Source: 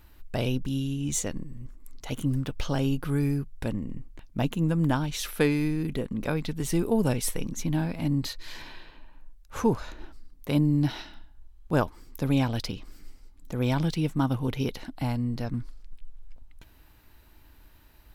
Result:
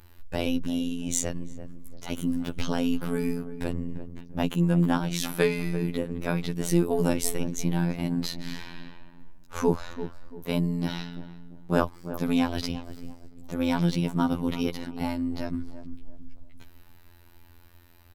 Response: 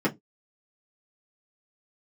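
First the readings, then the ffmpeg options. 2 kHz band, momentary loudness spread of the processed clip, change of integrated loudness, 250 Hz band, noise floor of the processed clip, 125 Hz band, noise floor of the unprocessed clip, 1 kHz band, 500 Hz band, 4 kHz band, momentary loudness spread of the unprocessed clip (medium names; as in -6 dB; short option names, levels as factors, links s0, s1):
+1.0 dB, 17 LU, 0.0 dB, +1.0 dB, -52 dBFS, -2.5 dB, -55 dBFS, +1.0 dB, +2.0 dB, +1.0 dB, 16 LU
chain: -filter_complex "[0:a]asplit=2[s0][s1];[s1]adelay=341,lowpass=f=900:p=1,volume=0.282,asplit=2[s2][s3];[s3]adelay=341,lowpass=f=900:p=1,volume=0.39,asplit=2[s4][s5];[s5]adelay=341,lowpass=f=900:p=1,volume=0.39,asplit=2[s6][s7];[s7]adelay=341,lowpass=f=900:p=1,volume=0.39[s8];[s0][s2][s4][s6][s8]amix=inputs=5:normalize=0,afftfilt=real='hypot(re,im)*cos(PI*b)':imag='0':win_size=2048:overlap=0.75,volume=1.68"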